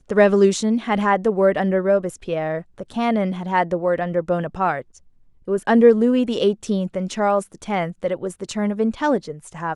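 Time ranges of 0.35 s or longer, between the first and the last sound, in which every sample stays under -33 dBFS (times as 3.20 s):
4.81–5.48 s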